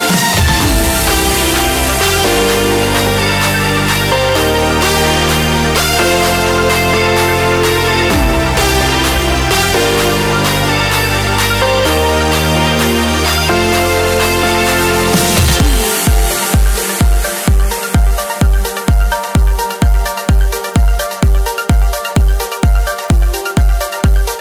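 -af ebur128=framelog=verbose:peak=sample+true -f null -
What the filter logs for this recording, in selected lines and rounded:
Integrated loudness:
  I:         -11.8 LUFS
  Threshold: -21.8 LUFS
Loudness range:
  LRA:         3.0 LU
  Threshold: -31.7 LUFS
  LRA low:   -13.9 LUFS
  LRA high:  -10.9 LUFS
Sample peak:
  Peak:       -4.0 dBFS
True peak:
  Peak:       -2.7 dBFS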